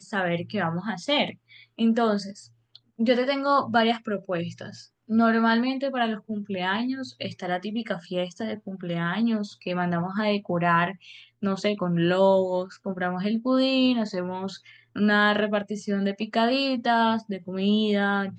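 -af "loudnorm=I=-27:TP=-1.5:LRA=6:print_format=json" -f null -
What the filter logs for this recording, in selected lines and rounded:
"input_i" : "-25.2",
"input_tp" : "-7.8",
"input_lra" : "3.3",
"input_thresh" : "-35.5",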